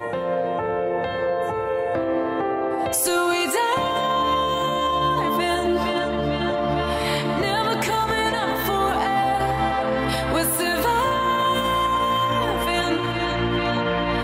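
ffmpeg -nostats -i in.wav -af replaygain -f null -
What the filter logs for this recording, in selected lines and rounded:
track_gain = +4.9 dB
track_peak = 0.197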